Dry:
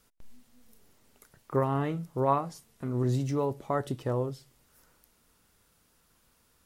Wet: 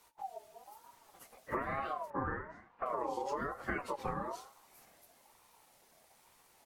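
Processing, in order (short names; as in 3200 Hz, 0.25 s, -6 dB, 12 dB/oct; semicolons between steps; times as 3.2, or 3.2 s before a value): phase scrambler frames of 50 ms; feedback echo 86 ms, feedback 45%, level -21 dB; compressor 16:1, threshold -35 dBFS, peak gain reduction 16 dB; 2.1–2.86 LPF 1300 Hz 12 dB/oct; ring modulator with a swept carrier 800 Hz, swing 20%, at 1.1 Hz; gain +4.5 dB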